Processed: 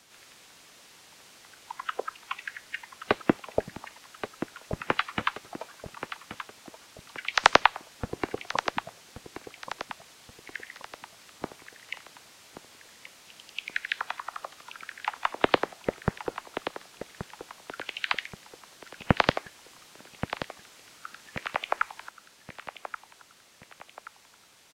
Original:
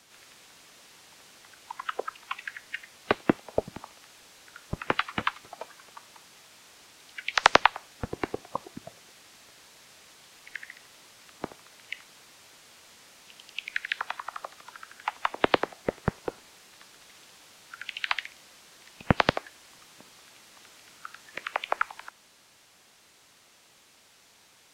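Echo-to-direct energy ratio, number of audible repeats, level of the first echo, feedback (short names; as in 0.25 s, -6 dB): -10.0 dB, 4, -11.0 dB, 42%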